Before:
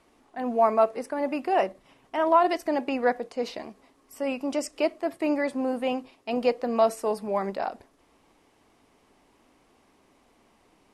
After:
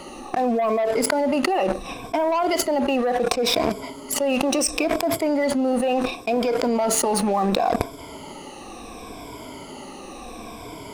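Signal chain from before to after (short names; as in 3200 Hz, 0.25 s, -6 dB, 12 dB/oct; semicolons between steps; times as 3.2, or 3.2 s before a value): moving spectral ripple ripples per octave 1.7, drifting -0.71 Hz, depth 16 dB; bell 1700 Hz -9.5 dB 0.42 oct; sample leveller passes 2; fast leveller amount 100%; gain -13.5 dB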